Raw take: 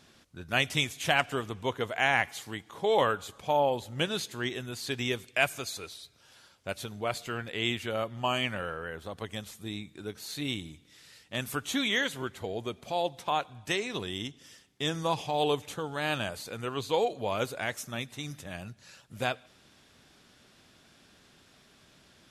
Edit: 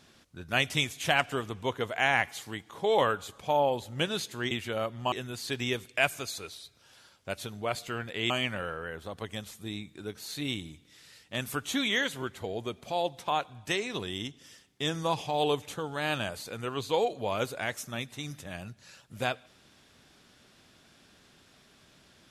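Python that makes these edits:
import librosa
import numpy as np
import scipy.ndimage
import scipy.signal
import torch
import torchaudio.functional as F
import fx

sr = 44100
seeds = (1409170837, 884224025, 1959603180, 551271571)

y = fx.edit(x, sr, fx.move(start_s=7.69, length_s=0.61, to_s=4.51), tone=tone)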